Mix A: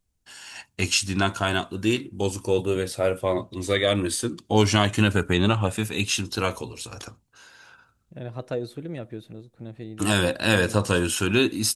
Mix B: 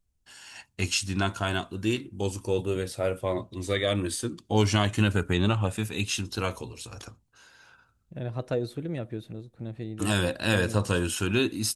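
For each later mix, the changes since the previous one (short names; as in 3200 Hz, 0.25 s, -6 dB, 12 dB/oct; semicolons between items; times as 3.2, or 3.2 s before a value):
first voice -5.0 dB; master: add low shelf 100 Hz +7 dB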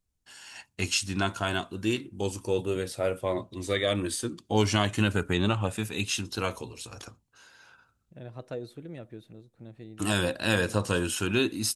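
second voice -7.5 dB; master: add low shelf 100 Hz -7 dB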